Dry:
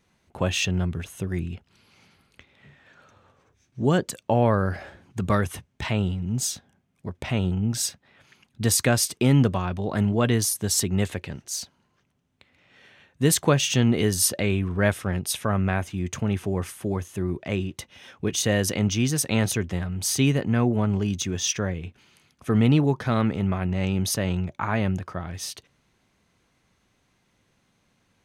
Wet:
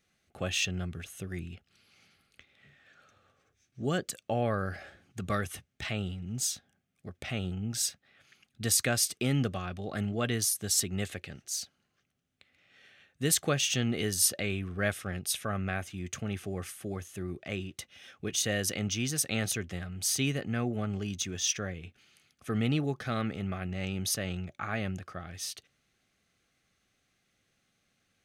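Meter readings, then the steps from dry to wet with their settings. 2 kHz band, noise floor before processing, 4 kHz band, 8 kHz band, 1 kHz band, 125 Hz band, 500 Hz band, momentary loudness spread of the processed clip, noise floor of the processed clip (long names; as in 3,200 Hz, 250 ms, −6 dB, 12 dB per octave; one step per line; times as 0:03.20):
−5.0 dB, −69 dBFS, −4.0 dB, −3.5 dB, −9.0 dB, −10.5 dB, −9.0 dB, 13 LU, −76 dBFS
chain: Butterworth band-reject 960 Hz, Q 3.9
tilt shelving filter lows −3.5 dB
level −7 dB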